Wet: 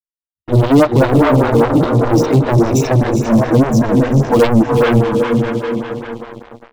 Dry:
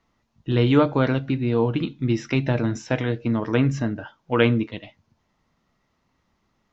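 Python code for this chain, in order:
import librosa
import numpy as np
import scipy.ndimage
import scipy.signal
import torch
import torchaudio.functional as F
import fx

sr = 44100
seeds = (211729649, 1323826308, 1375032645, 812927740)

p1 = fx.bin_expand(x, sr, power=2.0)
p2 = fx.peak_eq(p1, sr, hz=2500.0, db=-9.5, octaves=0.86)
p3 = p2 + fx.echo_diffused(p2, sr, ms=458, feedback_pct=45, wet_db=-4.5, dry=0)
p4 = fx.dynamic_eq(p3, sr, hz=110.0, q=2.2, threshold_db=-41.0, ratio=4.0, max_db=6)
p5 = 10.0 ** (-22.0 / 20.0) * np.tanh(p4 / 10.0 ** (-22.0 / 20.0))
p6 = p4 + (p5 * 10.0 ** (-8.0 / 20.0))
p7 = fx.leveller(p6, sr, passes=5)
p8 = fx.stagger_phaser(p7, sr, hz=5.0)
y = p8 * 10.0 ** (3.0 / 20.0)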